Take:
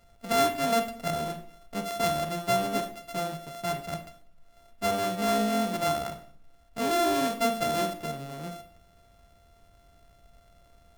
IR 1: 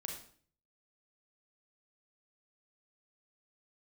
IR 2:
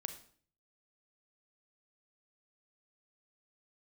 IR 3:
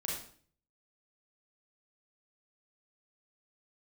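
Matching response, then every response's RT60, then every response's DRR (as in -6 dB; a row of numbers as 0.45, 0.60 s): 2; 0.50, 0.50, 0.50 s; 0.5, 7.5, -4.0 dB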